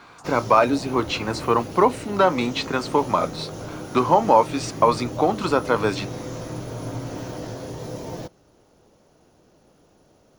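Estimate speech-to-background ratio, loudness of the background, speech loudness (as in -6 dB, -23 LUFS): 12.5 dB, -34.0 LUFS, -21.5 LUFS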